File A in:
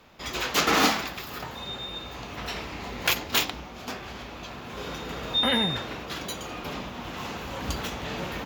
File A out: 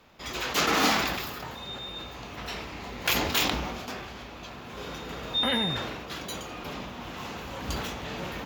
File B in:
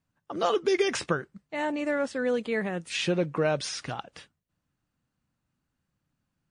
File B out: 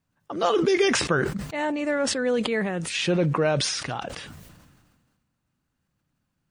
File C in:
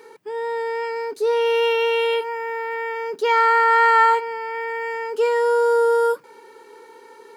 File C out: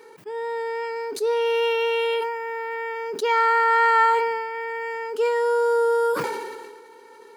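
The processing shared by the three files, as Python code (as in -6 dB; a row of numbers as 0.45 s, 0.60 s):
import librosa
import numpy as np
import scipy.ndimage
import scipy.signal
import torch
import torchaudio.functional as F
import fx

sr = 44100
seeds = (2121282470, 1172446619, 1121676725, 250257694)

y = fx.sustainer(x, sr, db_per_s=35.0)
y = librosa.util.normalize(y) * 10.0 ** (-9 / 20.0)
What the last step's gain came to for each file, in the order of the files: -3.0 dB, +2.5 dB, -3.0 dB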